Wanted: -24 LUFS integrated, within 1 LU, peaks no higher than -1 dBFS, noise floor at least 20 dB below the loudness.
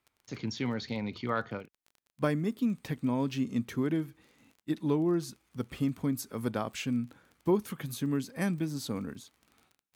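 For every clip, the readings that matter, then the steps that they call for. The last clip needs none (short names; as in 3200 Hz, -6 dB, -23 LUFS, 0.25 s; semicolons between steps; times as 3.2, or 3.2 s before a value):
ticks 22/s; loudness -33.0 LUFS; peak -15.0 dBFS; loudness target -24.0 LUFS
-> de-click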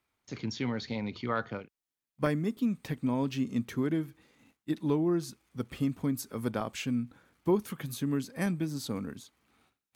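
ticks 0.50/s; loudness -33.0 LUFS; peak -15.0 dBFS; loudness target -24.0 LUFS
-> gain +9 dB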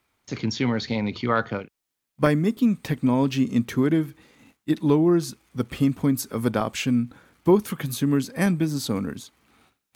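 loudness -24.0 LUFS; peak -6.0 dBFS; noise floor -82 dBFS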